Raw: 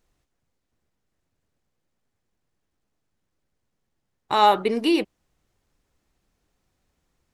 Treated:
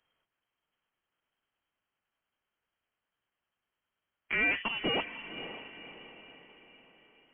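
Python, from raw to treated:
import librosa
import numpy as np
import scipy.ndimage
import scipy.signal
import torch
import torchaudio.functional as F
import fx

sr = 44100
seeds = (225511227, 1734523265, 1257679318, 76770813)

y = fx.peak_eq(x, sr, hz=2300.0, db=7.5, octaves=2.4)
y = fx.tube_stage(y, sr, drive_db=18.0, bias=0.4)
y = fx.tilt_shelf(y, sr, db=-5.0, hz=640.0)
y = fx.echo_diffused(y, sr, ms=528, feedback_pct=47, wet_db=-11.0)
y = fx.freq_invert(y, sr, carrier_hz=3200)
y = F.gain(torch.from_numpy(y), -8.5).numpy()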